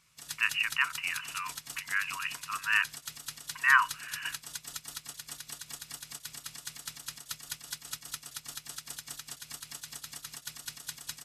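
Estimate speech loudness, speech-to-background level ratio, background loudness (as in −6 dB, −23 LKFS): −29.5 LKFS, 11.5 dB, −41.0 LKFS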